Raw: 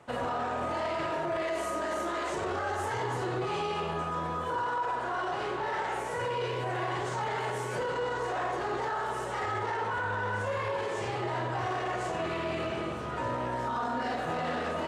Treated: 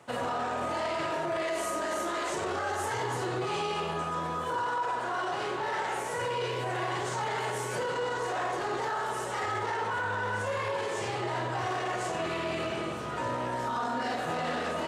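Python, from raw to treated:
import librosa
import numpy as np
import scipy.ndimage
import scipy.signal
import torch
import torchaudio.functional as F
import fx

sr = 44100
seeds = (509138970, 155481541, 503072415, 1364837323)

y = scipy.signal.sosfilt(scipy.signal.butter(2, 89.0, 'highpass', fs=sr, output='sos'), x)
y = fx.high_shelf(y, sr, hz=4000.0, db=7.5)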